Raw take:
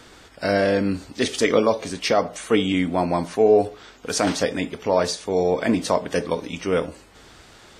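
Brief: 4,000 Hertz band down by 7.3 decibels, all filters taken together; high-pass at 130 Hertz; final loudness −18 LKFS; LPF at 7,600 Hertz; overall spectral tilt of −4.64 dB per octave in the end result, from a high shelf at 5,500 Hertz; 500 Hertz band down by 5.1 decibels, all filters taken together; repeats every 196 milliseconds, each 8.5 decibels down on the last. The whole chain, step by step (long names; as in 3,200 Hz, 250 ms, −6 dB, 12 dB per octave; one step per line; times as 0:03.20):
high-pass filter 130 Hz
low-pass filter 7,600 Hz
parametric band 500 Hz −6 dB
parametric band 4,000 Hz −7 dB
high-shelf EQ 5,500 Hz −5.5 dB
repeating echo 196 ms, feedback 38%, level −8.5 dB
level +7.5 dB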